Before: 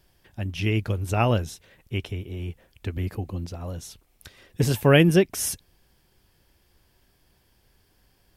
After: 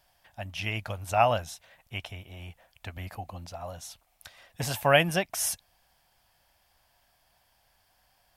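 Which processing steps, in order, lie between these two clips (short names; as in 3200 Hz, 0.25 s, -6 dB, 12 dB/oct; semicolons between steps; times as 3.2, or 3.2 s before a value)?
resonant low shelf 520 Hz -9 dB, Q 3; gain -1.5 dB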